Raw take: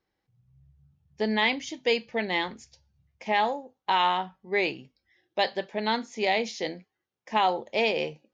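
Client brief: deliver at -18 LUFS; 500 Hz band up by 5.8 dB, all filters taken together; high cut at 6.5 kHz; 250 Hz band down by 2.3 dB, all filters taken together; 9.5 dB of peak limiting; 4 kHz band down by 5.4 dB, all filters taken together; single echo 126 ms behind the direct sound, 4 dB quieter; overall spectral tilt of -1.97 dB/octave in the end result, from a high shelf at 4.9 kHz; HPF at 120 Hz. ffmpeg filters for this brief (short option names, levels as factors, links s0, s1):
-af "highpass=120,lowpass=6500,equalizer=f=250:t=o:g=-5.5,equalizer=f=500:t=o:g=8.5,equalizer=f=4000:t=o:g=-4.5,highshelf=f=4900:g=-6.5,alimiter=limit=0.112:level=0:latency=1,aecho=1:1:126:0.631,volume=3.35"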